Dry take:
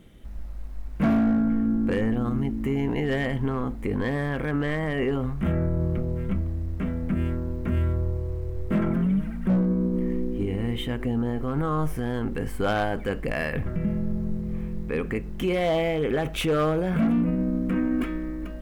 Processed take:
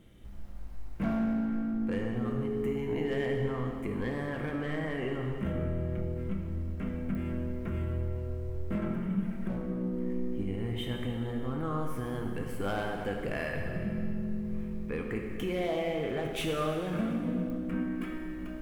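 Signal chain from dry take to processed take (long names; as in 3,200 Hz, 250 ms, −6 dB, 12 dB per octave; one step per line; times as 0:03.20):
downward compressor 2.5 to 1, threshold −26 dBFS, peak gain reduction 5 dB
0:02.21–0:03.38: steady tone 420 Hz −31 dBFS
dense smooth reverb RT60 2.2 s, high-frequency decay 1×, DRR 1.5 dB
digital clicks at 0:07.15/0:17.50, −26 dBFS
level −6 dB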